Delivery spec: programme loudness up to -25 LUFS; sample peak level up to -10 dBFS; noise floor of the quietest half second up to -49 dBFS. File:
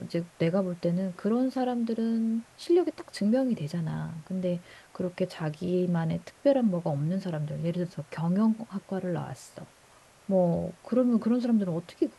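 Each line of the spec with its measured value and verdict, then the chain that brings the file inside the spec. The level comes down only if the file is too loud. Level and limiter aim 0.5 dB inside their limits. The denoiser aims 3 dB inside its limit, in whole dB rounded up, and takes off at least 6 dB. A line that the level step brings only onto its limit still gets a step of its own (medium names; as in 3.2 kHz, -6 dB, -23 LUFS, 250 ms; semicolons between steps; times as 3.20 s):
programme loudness -29.0 LUFS: pass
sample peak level -12.0 dBFS: pass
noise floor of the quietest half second -57 dBFS: pass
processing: none needed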